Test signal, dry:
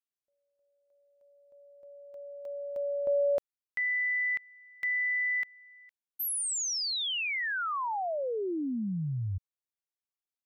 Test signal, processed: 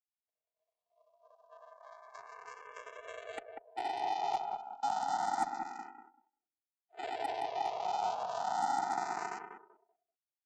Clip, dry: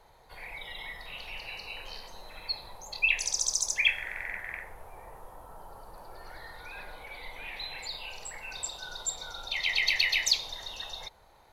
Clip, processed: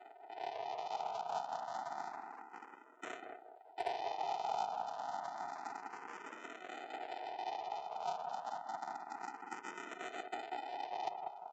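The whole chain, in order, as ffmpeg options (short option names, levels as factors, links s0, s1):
-filter_complex "[0:a]areverse,acompressor=threshold=0.00562:ratio=4:attack=19:release=805:knee=6:detection=peak,areverse,aresample=8000,aresample=44100,afftfilt=real='hypot(re,im)*cos(2*PI*random(0))':imag='hypot(re,im)*sin(2*PI*random(1))':win_size=512:overlap=0.75,aresample=16000,acrusher=samples=29:mix=1:aa=0.000001,aresample=44100,highpass=f=740:t=q:w=3.6,aeval=exprs='0.0316*(cos(1*acos(clip(val(0)/0.0316,-1,1)))-cos(1*PI/2))+0.00794*(cos(3*acos(clip(val(0)/0.0316,-1,1)))-cos(3*PI/2))+0.0141*(cos(5*acos(clip(val(0)/0.0316,-1,1)))-cos(5*PI/2))+0.000708*(cos(6*acos(clip(val(0)/0.0316,-1,1)))-cos(6*PI/2))+0.000562*(cos(8*acos(clip(val(0)/0.0316,-1,1)))-cos(8*PI/2))':c=same,asplit=2[s0][s1];[s1]adelay=192,lowpass=f=1500:p=1,volume=0.631,asplit=2[s2][s3];[s3]adelay=192,lowpass=f=1500:p=1,volume=0.35,asplit=2[s4][s5];[s5]adelay=192,lowpass=f=1500:p=1,volume=0.35,asplit=2[s6][s7];[s7]adelay=192,lowpass=f=1500:p=1,volume=0.35[s8];[s0][s2][s4][s6][s8]amix=inputs=5:normalize=0,afftdn=nr=19:nf=-66,asplit=2[s9][s10];[s10]afreqshift=0.29[s11];[s9][s11]amix=inputs=2:normalize=1,volume=3.35"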